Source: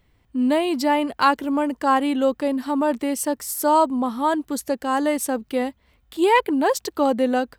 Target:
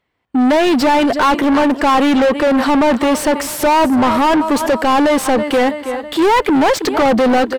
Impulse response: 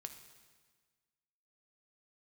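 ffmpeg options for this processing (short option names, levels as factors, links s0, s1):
-filter_complex "[0:a]aecho=1:1:326|652|978|1304:0.1|0.047|0.0221|0.0104,asplit=2[s0][s1];[s1]highpass=f=720:p=1,volume=50.1,asoftclip=type=tanh:threshold=0.562[s2];[s0][s2]amix=inputs=2:normalize=0,lowpass=f=1900:p=1,volume=0.501,agate=range=0.0501:threshold=0.0141:ratio=16:detection=peak"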